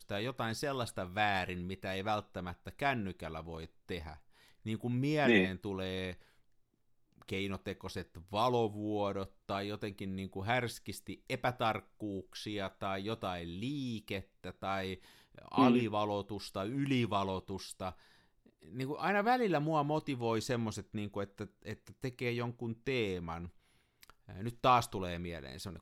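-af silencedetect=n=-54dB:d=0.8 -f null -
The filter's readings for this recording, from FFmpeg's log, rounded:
silence_start: 6.22
silence_end: 7.18 | silence_duration: 0.97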